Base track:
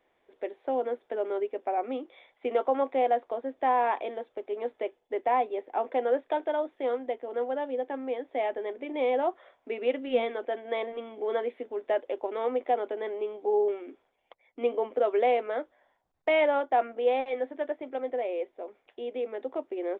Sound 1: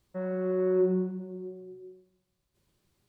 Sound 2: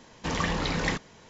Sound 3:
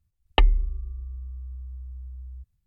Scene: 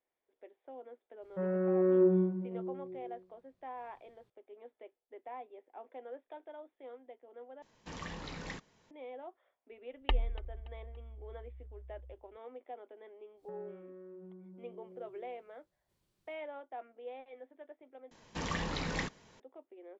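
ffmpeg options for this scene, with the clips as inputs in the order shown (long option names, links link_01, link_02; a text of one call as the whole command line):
ffmpeg -i bed.wav -i cue0.wav -i cue1.wav -i cue2.wav -filter_complex "[1:a]asplit=2[link_01][link_02];[2:a]asplit=2[link_03][link_04];[0:a]volume=-20dB[link_05];[link_01]lowpass=frequency=2100:poles=1[link_06];[3:a]aecho=1:1:286|572|858:0.112|0.0426|0.0162[link_07];[link_02]acompressor=threshold=-43dB:ratio=6:attack=3.2:release=140:knee=1:detection=peak[link_08];[link_05]asplit=3[link_09][link_10][link_11];[link_09]atrim=end=7.624[link_12];[link_03]atrim=end=1.29,asetpts=PTS-STARTPTS,volume=-15.5dB[link_13];[link_10]atrim=start=8.906:end=18.114[link_14];[link_04]atrim=end=1.29,asetpts=PTS-STARTPTS,volume=-8dB[link_15];[link_11]atrim=start=19.396[link_16];[link_06]atrim=end=3.08,asetpts=PTS-STARTPTS,volume=-0.5dB,afade=type=in:duration=0.004:curve=hsin,afade=type=out:start_time=3.076:duration=0.004:curve=hsin,adelay=1220[link_17];[link_07]atrim=end=2.66,asetpts=PTS-STARTPTS,volume=-12.5dB,afade=type=in:duration=0.004:curve=hsin,afade=type=out:start_time=2.656:duration=0.004:curve=hsin,adelay=9710[link_18];[link_08]atrim=end=3.08,asetpts=PTS-STARTPTS,volume=-7dB,afade=type=in:duration=0.1,afade=type=out:start_time=2.98:duration=0.1,adelay=13340[link_19];[link_12][link_13]acrossfade=duration=0.004:curve1=hsin:curve2=hsin[link_20];[link_20][link_14]acrossfade=duration=0.004:curve1=hsin:curve2=hsin[link_21];[link_21][link_15]acrossfade=duration=0.004:curve1=hsin:curve2=hsin[link_22];[link_22][link_16]acrossfade=duration=0.004:curve1=hsin:curve2=hsin[link_23];[link_23][link_17][link_18][link_19]amix=inputs=4:normalize=0" out.wav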